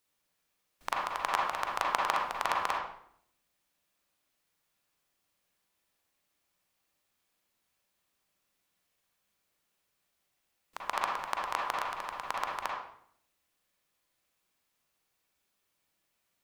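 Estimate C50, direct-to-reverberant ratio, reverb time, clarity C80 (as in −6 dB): 0.5 dB, −2.0 dB, 0.65 s, 5.0 dB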